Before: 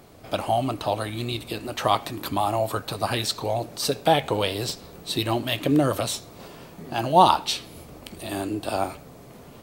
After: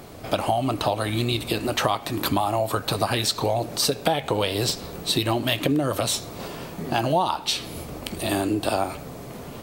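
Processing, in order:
downward compressor 8 to 1, threshold −27 dBFS, peak gain reduction 17 dB
level +8 dB

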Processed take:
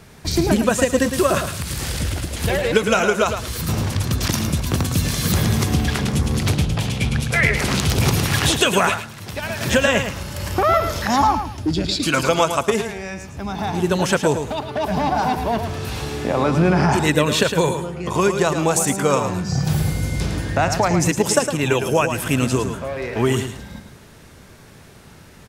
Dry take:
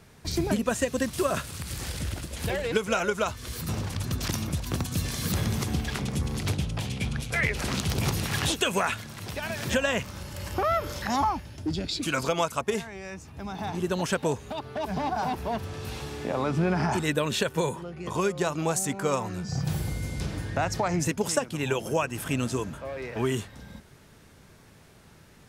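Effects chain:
repeating echo 109 ms, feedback 23%, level −8 dB
0:08.88–0:09.61: expander for the loud parts 1.5 to 1, over −38 dBFS
level +8.5 dB

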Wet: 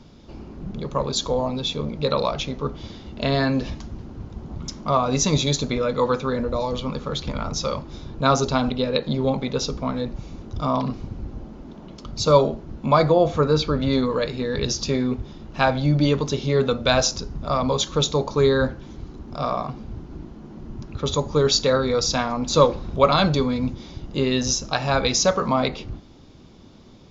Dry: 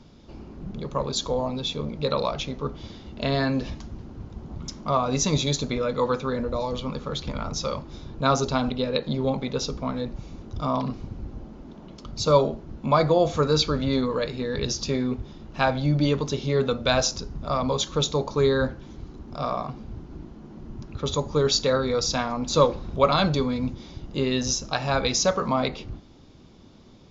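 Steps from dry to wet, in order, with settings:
0:13.10–0:13.81: high-shelf EQ 4,800 Hz → 3,500 Hz −12 dB
level +3 dB

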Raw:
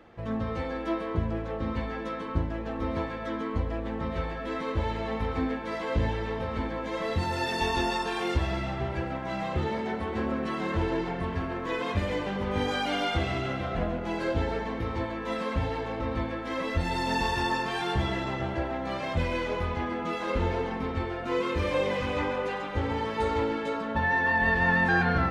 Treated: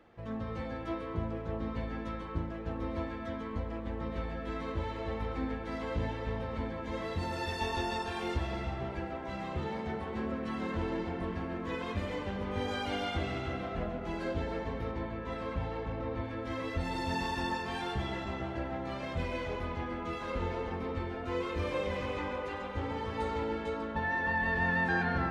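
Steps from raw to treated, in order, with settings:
0:14.91–0:16.24: high-shelf EQ 4,600 Hz −9.5 dB
feedback echo with a low-pass in the loop 308 ms, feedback 59%, low-pass 960 Hz, level −6 dB
level −7 dB

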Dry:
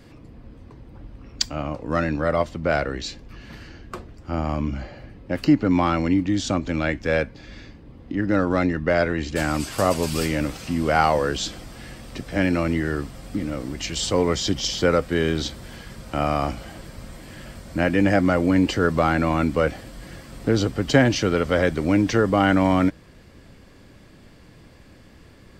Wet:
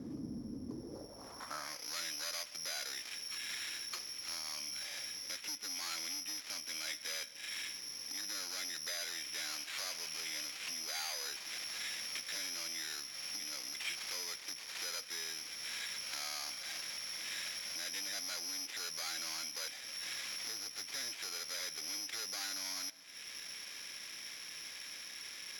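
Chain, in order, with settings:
variable-slope delta modulation 16 kbit/s
downward compressor 4 to 1, threshold −38 dBFS, peak gain reduction 21 dB
soft clipping −39 dBFS, distortion −8 dB
bad sample-rate conversion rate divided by 8×, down filtered, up zero stuff
on a send at −19.5 dB: convolution reverb RT60 1.7 s, pre-delay 85 ms
on the sum: band-pass filter sweep 250 Hz → 2,500 Hz, 0:00.66–0:01.85
level +10 dB

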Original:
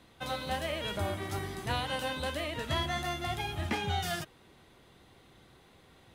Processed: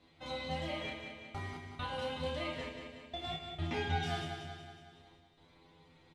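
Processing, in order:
low-pass filter 5,000 Hz 12 dB per octave
parametric band 1,600 Hz −7 dB 0.39 octaves
stiff-string resonator 82 Hz, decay 0.27 s, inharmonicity 0.002
gate pattern "xxxx..x." 67 BPM −60 dB
double-tracking delay 31 ms −5 dB
repeating echo 185 ms, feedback 55%, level −7.5 dB
feedback delay network reverb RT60 1.4 s, low-frequency decay 1.55×, high-frequency decay 0.95×, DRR 6.5 dB
level +2.5 dB

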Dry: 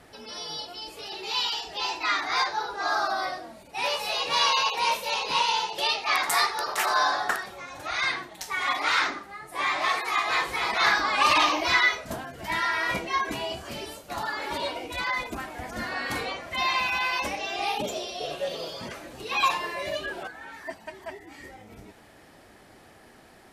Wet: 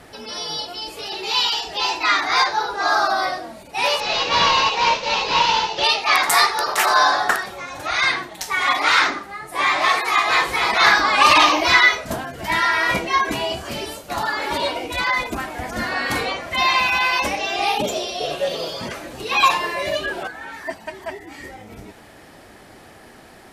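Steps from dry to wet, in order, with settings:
0:04.00–0:05.84: variable-slope delta modulation 32 kbit/s
level +8 dB

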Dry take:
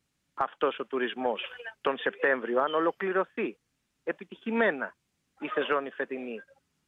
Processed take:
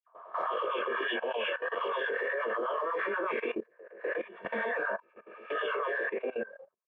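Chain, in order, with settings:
peak hold with a rise ahead of every peak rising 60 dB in 0.73 s
noise gate with hold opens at −52 dBFS
low-pass that shuts in the quiet parts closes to 880 Hz, open at −19.5 dBFS
comb filter 1.8 ms, depth 99%
in parallel at −3 dB: downward compressor 8 to 1, threshold −35 dBFS, peak gain reduction 19.5 dB
on the sum: brickwall limiter −18 dBFS, peak gain reduction 11.5 dB
transient designer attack −11 dB, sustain +3 dB
auto-filter high-pass sine 8.2 Hz 290–1,600 Hz
hollow resonant body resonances 220/920 Hz, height 8 dB, ringing for 65 ms
all-pass dispersion lows, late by 81 ms, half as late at 2,000 Hz
chorus effect 1.6 Hz, delay 19.5 ms, depth 5.3 ms
output level in coarse steps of 17 dB
level +2 dB

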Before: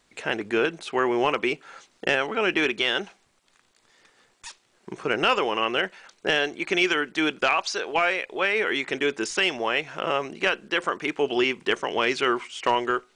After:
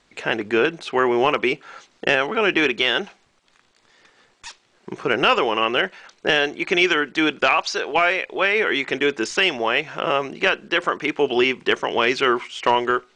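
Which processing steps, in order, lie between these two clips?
low-pass filter 6,300 Hz 12 dB per octave
level +4.5 dB

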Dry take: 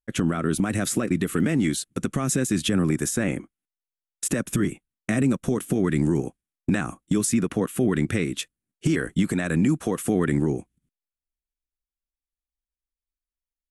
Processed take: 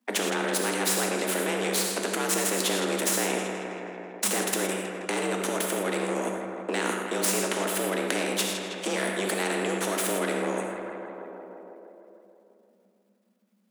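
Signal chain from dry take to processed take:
gain on one half-wave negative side −7 dB
high-shelf EQ 2,400 Hz −10.5 dB
in parallel at −1 dB: compressor whose output falls as the input rises −35 dBFS
on the sum: frequency shifter +190 Hz
on a send: tape delay 161 ms, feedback 70%, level −11 dB, low-pass 4,400 Hz
on the sum: reverb whose tail is shaped and stops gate 140 ms flat, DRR 3.5 dB
every bin compressed towards the loudest bin 2 to 1

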